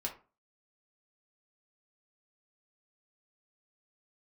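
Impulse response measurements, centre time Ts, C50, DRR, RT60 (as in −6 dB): 15 ms, 10.5 dB, −0.5 dB, 0.35 s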